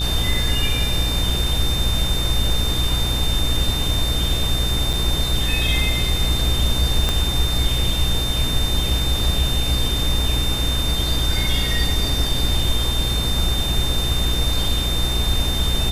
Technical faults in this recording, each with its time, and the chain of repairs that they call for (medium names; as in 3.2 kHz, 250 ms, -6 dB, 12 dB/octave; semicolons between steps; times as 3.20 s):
buzz 60 Hz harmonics 30 -24 dBFS
whine 3.6 kHz -24 dBFS
4.93–4.94 s: dropout 6.2 ms
7.09 s: pop -6 dBFS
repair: de-click; band-stop 3.6 kHz, Q 30; de-hum 60 Hz, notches 30; interpolate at 4.93 s, 6.2 ms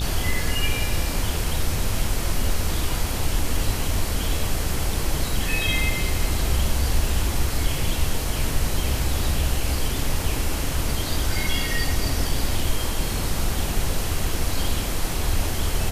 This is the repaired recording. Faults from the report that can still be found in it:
7.09 s: pop